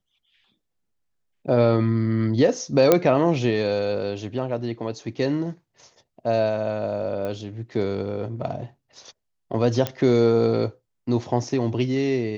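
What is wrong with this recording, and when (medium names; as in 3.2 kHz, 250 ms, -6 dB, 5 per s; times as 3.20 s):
2.92 s: pop -2 dBFS
7.25 s: pop -19 dBFS
9.87 s: pop -10 dBFS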